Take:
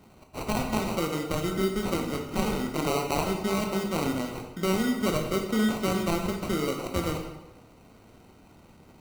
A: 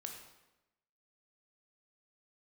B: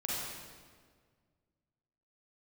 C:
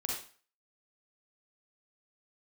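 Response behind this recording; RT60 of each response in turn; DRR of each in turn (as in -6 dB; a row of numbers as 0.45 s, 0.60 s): A; 1.0 s, 1.7 s, 0.40 s; 2.0 dB, -6.5 dB, -2.5 dB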